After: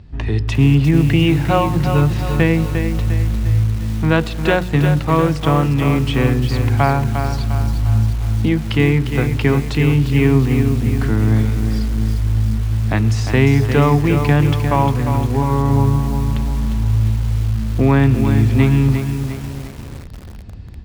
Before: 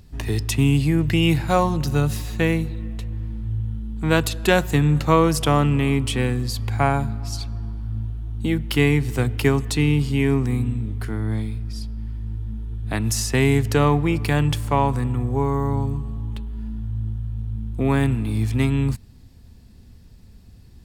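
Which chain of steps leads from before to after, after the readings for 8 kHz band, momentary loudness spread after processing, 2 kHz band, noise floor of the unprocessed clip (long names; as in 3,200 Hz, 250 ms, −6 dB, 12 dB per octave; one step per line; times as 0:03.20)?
−4.0 dB, 6 LU, +3.5 dB, −46 dBFS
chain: in parallel at +0.5 dB: downward compressor 6 to 1, threshold −26 dBFS, peak gain reduction 15 dB
on the sum: high-pass filter 46 Hz 12 dB per octave
automatic gain control gain up to 6 dB
low-pass filter 3,100 Hz 12 dB per octave
low-shelf EQ 83 Hz +8 dB
mains-hum notches 60/120/180/240/300/360/420/480 Hz
feedback echo at a low word length 352 ms, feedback 55%, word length 5 bits, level −7 dB
level −1 dB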